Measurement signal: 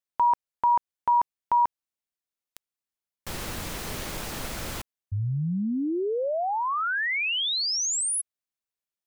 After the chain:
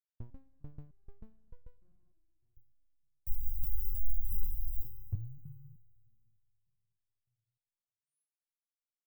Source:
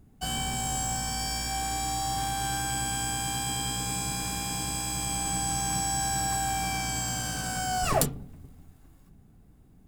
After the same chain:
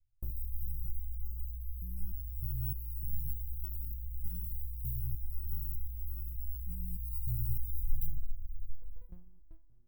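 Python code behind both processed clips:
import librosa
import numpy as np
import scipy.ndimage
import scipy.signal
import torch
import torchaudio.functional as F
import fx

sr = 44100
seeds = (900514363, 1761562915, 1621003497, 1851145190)

p1 = scipy.signal.sosfilt(scipy.signal.cheby2(5, 70, [240.0, 8100.0], 'bandstop', fs=sr, output='sos'), x)
p2 = fx.low_shelf(p1, sr, hz=100.0, db=10.5)
p3 = fx.gate_hold(p2, sr, open_db=-41.0, close_db=-46.0, hold_ms=20.0, range_db=-31, attack_ms=3.1, release_ms=26.0)
p4 = fx.over_compress(p3, sr, threshold_db=-36.0, ratio=-0.5)
p5 = p3 + (p4 * librosa.db_to_amplitude(2.0))
p6 = fx.rev_schroeder(p5, sr, rt60_s=2.5, comb_ms=28, drr_db=14.0)
p7 = fx.resonator_held(p6, sr, hz=3.3, low_hz=120.0, high_hz=490.0)
y = p7 * librosa.db_to_amplitude(12.0)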